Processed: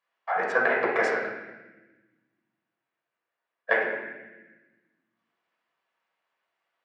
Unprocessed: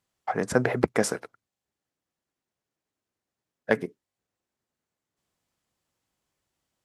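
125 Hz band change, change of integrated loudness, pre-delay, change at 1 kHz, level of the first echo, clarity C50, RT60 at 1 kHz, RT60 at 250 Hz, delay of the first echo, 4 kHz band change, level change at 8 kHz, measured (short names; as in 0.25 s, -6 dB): under -15 dB, +1.0 dB, 6 ms, +4.5 dB, none, 1.5 dB, 1.0 s, 1.9 s, none, -3.5 dB, under -15 dB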